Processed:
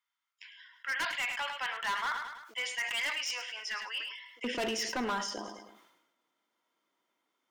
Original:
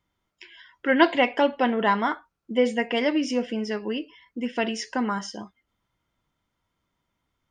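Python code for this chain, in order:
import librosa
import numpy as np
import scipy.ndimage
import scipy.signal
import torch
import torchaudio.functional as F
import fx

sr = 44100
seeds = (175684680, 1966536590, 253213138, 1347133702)

y = fx.highpass(x, sr, hz=fx.steps((0.0, 1100.0), (4.44, 280.0)), slope=24)
y = fx.rider(y, sr, range_db=4, speed_s=2.0)
y = np.clip(10.0 ** (27.5 / 20.0) * y, -1.0, 1.0) / 10.0 ** (27.5 / 20.0)
y = fx.echo_feedback(y, sr, ms=105, feedback_pct=33, wet_db=-13)
y = fx.sustainer(y, sr, db_per_s=56.0)
y = y * librosa.db_to_amplitude(-2.0)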